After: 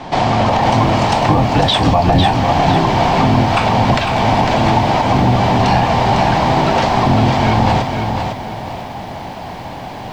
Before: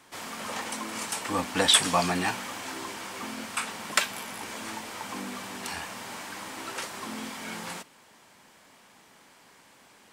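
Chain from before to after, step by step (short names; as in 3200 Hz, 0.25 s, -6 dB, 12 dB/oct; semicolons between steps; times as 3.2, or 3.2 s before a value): octaver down 1 oct, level +3 dB; EQ curve 200 Hz 0 dB, 480 Hz -3 dB, 740 Hz +8 dB, 1300 Hz -10 dB, 4300 Hz -4 dB, 13000 Hz -15 dB; compressor 4:1, threshold -39 dBFS, peak gain reduction 18.5 dB; air absorption 150 m; maximiser +32 dB; lo-fi delay 0.502 s, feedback 35%, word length 7-bit, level -5.5 dB; gain -3 dB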